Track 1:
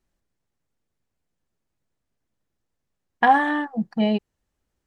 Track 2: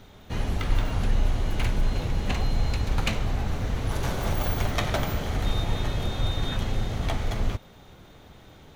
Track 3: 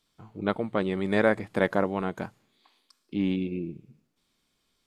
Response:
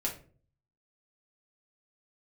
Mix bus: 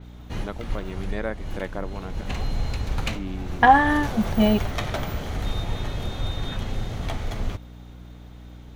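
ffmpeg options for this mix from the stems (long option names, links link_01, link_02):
-filter_complex "[0:a]adelay=400,volume=2dB[link_01];[1:a]volume=-1.5dB[link_02];[2:a]volume=-7.5dB,asplit=2[link_03][link_04];[link_04]apad=whole_len=386120[link_05];[link_02][link_05]sidechaincompress=threshold=-35dB:ratio=8:attack=5.6:release=307[link_06];[link_01][link_06][link_03]amix=inputs=3:normalize=0,aeval=exprs='val(0)+0.00891*(sin(2*PI*60*n/s)+sin(2*PI*2*60*n/s)/2+sin(2*PI*3*60*n/s)/3+sin(2*PI*4*60*n/s)/4+sin(2*PI*5*60*n/s)/5)':channel_layout=same,adynamicequalizer=threshold=0.00891:dfrequency=4800:dqfactor=0.7:tfrequency=4800:tqfactor=0.7:attack=5:release=100:ratio=0.375:range=2:mode=cutabove:tftype=highshelf"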